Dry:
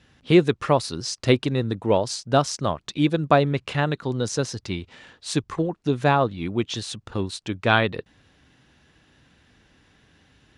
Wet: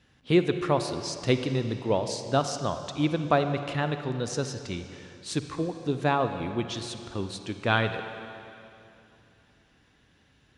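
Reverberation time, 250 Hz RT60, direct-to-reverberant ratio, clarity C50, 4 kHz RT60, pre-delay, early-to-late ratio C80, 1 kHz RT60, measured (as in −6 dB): 2.8 s, 2.7 s, 8.0 dB, 8.5 dB, 2.6 s, 39 ms, 9.0 dB, 2.7 s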